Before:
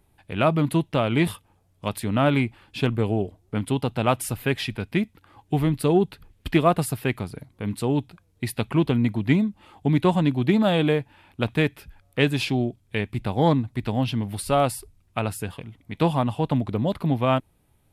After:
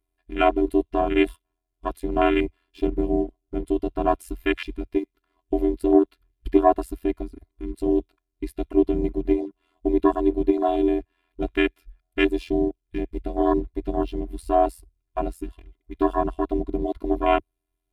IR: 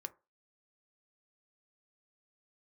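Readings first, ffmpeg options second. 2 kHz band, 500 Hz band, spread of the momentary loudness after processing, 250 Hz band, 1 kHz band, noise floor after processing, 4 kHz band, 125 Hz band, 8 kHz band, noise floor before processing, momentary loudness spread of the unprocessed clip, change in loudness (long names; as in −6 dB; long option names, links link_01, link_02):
−2.5 dB, +2.5 dB, 13 LU, 0.0 dB, +2.0 dB, −80 dBFS, −6.5 dB, −14.5 dB, below −10 dB, −64 dBFS, 11 LU, 0.0 dB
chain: -filter_complex "[0:a]asplit=2[link_01][link_02];[link_02]acrusher=bits=5:mix=0:aa=0.5,volume=-7dB[link_03];[link_01][link_03]amix=inputs=2:normalize=0,acontrast=45,afftfilt=real='hypot(re,im)*cos(PI*b)':imag='0':win_size=512:overlap=0.75,aeval=exprs='val(0)*sin(2*PI*43*n/s)':channel_layout=same,afwtdn=0.0631"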